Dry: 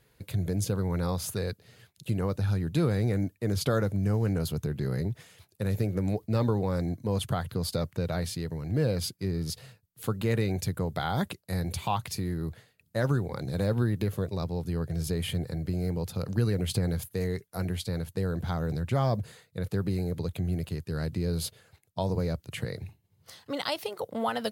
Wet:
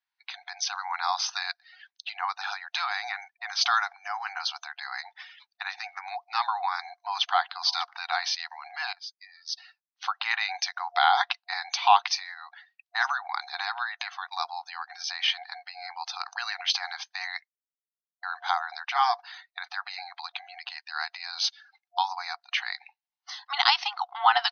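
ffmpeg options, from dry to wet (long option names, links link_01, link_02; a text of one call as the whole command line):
ffmpeg -i in.wav -filter_complex "[0:a]asplit=2[link_01][link_02];[link_02]afade=type=in:start_time=6.7:duration=0.01,afade=type=out:start_time=7.31:duration=0.01,aecho=0:1:590|1180:0.141254|0.0353134[link_03];[link_01][link_03]amix=inputs=2:normalize=0,asplit=4[link_04][link_05][link_06][link_07];[link_04]atrim=end=8.93,asetpts=PTS-STARTPTS,afade=type=out:start_time=8.926:duration=0.004:curve=hsin:silence=0.0794328[link_08];[link_05]atrim=start=8.93:end=17.48,asetpts=PTS-STARTPTS,afade=type=in:duration=1.21:silence=0.0794328,afade=type=out:start_time=8.546:duration=0.004:curve=hsin[link_09];[link_06]atrim=start=17.48:end=18.23,asetpts=PTS-STARTPTS,volume=0[link_10];[link_07]atrim=start=18.23,asetpts=PTS-STARTPTS,afade=type=in:duration=0.004:curve=hsin[link_11];[link_08][link_09][link_10][link_11]concat=n=4:v=0:a=1,afftfilt=real='re*between(b*sr/4096,710,6300)':imag='im*between(b*sr/4096,710,6300)':win_size=4096:overlap=0.75,afftdn=noise_reduction=25:noise_floor=-57,dynaudnorm=framelen=160:gausssize=5:maxgain=7.5dB,volume=4.5dB" out.wav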